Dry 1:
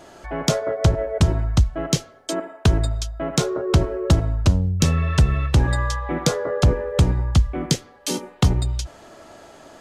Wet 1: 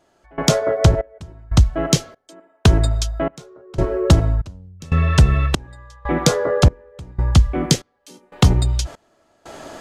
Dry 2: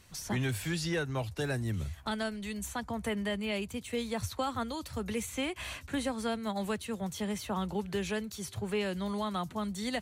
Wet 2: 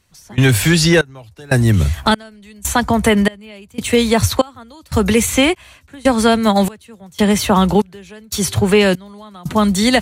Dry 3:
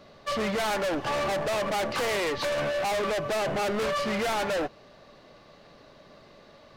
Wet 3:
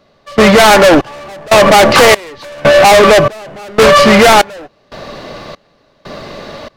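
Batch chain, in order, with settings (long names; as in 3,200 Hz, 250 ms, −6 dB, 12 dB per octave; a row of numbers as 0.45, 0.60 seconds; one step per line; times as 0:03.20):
in parallel at −1.5 dB: downward compressor, threshold −32 dBFS
on the sum: gate pattern "...xxxxx." 119 BPM −24 dB
normalise the peak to −2 dBFS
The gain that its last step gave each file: +3.0, +16.5, +19.5 decibels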